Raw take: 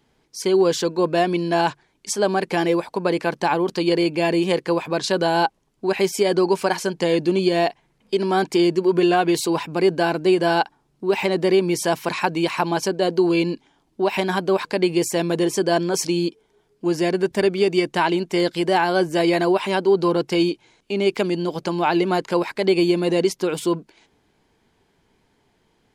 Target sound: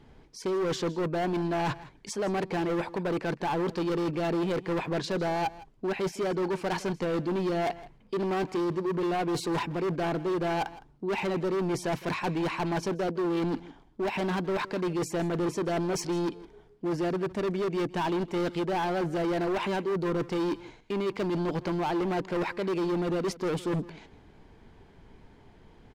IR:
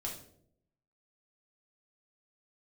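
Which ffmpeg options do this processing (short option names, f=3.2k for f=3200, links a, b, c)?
-af "lowpass=f=2k:p=1,lowshelf=f=92:g=11.5,areverse,acompressor=threshold=-30dB:ratio=6,areverse,volume=33dB,asoftclip=hard,volume=-33dB,aecho=1:1:161:0.119,volume=7dB"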